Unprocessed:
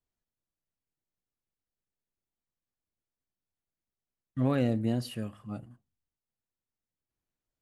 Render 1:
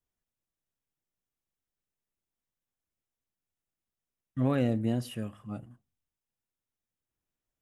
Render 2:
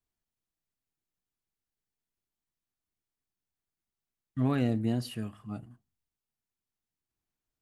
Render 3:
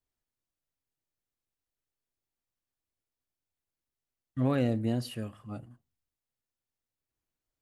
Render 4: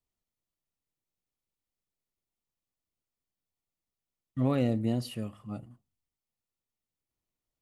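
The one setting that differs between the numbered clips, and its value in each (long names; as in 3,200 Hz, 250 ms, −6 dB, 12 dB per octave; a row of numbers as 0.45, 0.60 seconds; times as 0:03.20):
notch filter, centre frequency: 4,400, 540, 190, 1,600 Hertz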